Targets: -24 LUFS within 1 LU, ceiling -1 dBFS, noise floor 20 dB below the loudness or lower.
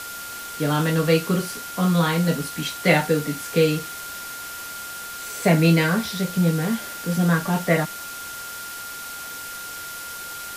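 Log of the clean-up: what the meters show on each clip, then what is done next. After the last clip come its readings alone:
steady tone 1.4 kHz; tone level -35 dBFS; noise floor -35 dBFS; noise floor target -44 dBFS; loudness -23.5 LUFS; peak level -3.5 dBFS; loudness target -24.0 LUFS
-> band-stop 1.4 kHz, Q 30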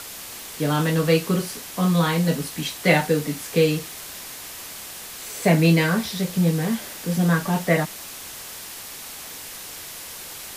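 steady tone not found; noise floor -37 dBFS; noise floor target -42 dBFS
-> noise reduction 6 dB, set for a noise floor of -37 dBFS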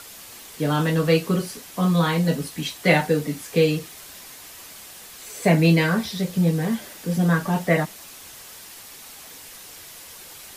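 noise floor -43 dBFS; loudness -22.0 LUFS; peak level -3.5 dBFS; loudness target -24.0 LUFS
-> trim -2 dB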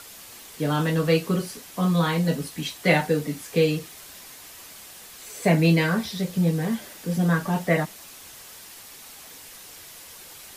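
loudness -24.0 LUFS; peak level -5.5 dBFS; noise floor -45 dBFS

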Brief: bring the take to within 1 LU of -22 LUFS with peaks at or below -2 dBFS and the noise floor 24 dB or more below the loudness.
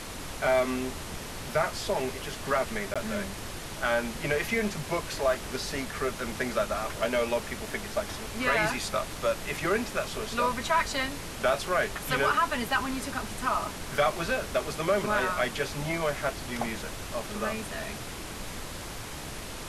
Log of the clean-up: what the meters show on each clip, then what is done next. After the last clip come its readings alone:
dropouts 1; longest dropout 16 ms; noise floor -39 dBFS; noise floor target -54 dBFS; loudness -30.0 LUFS; peak level -13.0 dBFS; loudness target -22.0 LUFS
-> interpolate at 2.94 s, 16 ms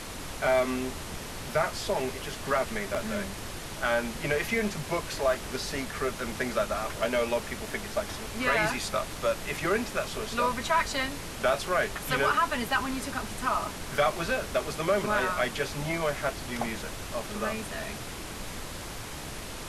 dropouts 0; noise floor -39 dBFS; noise floor target -54 dBFS
-> noise print and reduce 15 dB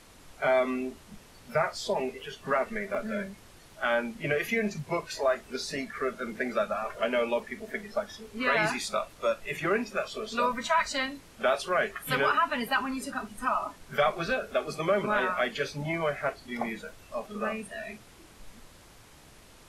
noise floor -54 dBFS; loudness -30.0 LUFS; peak level -12.5 dBFS; loudness target -22.0 LUFS
-> trim +8 dB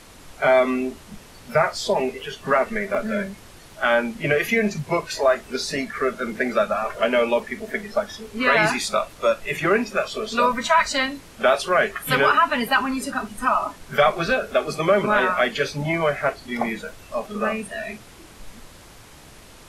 loudness -22.0 LUFS; peak level -4.5 dBFS; noise floor -46 dBFS

